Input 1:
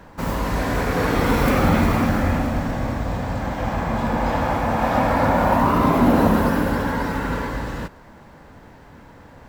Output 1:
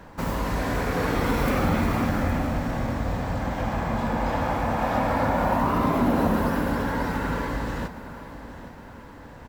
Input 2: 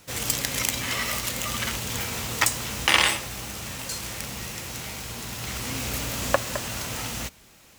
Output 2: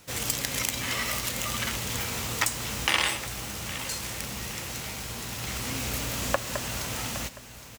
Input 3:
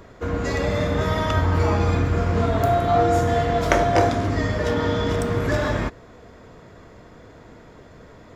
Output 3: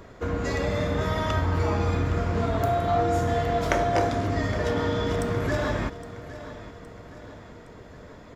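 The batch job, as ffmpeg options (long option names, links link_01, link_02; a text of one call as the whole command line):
ffmpeg -i in.wav -filter_complex "[0:a]acompressor=threshold=-26dB:ratio=1.5,asplit=2[link_01][link_02];[link_02]aecho=0:1:815|1630|2445|3260:0.178|0.0854|0.041|0.0197[link_03];[link_01][link_03]amix=inputs=2:normalize=0,volume=-1dB" out.wav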